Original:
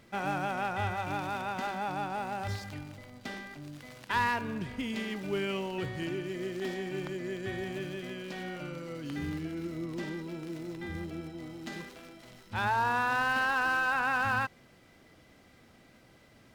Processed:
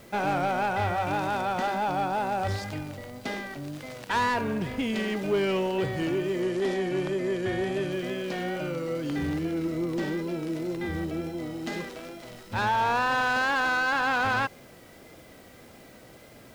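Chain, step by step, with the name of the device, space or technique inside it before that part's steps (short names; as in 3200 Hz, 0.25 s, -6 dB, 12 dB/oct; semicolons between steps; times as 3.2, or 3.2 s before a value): compact cassette (soft clip -29.5 dBFS, distortion -11 dB; LPF 13000 Hz; wow and flutter; white noise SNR 29 dB); 6.42–7.92 LPF 12000 Hz 24 dB/oct; bell 520 Hz +6 dB 1.2 oct; gain +6.5 dB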